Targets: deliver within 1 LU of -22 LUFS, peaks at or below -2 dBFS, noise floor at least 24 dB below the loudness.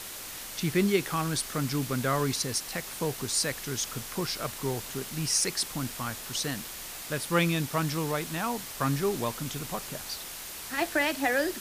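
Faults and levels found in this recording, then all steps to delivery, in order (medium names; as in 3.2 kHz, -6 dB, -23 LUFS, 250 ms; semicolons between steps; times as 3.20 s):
noise floor -41 dBFS; noise floor target -54 dBFS; loudness -30.0 LUFS; peak level -12.5 dBFS; loudness target -22.0 LUFS
-> noise print and reduce 13 dB; trim +8 dB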